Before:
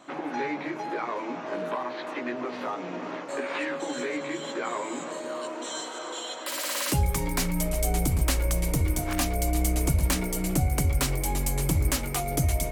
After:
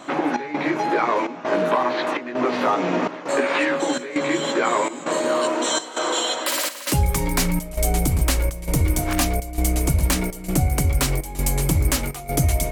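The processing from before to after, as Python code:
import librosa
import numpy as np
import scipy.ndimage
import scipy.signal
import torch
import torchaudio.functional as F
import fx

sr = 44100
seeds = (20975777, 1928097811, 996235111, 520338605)

y = fx.rider(x, sr, range_db=10, speed_s=0.5)
y = fx.step_gate(y, sr, bpm=166, pattern='xxxx..xxxx', floor_db=-12.0, edge_ms=4.5)
y = y * 10.0 ** (7.5 / 20.0)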